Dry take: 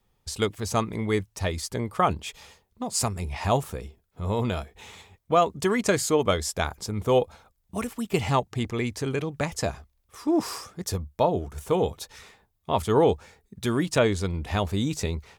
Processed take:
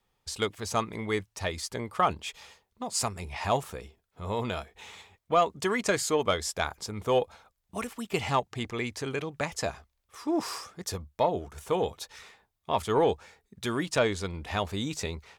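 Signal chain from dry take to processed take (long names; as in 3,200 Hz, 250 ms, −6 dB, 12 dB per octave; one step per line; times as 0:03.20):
mid-hump overdrive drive 6 dB, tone 6,400 Hz, clips at −8 dBFS
level −3 dB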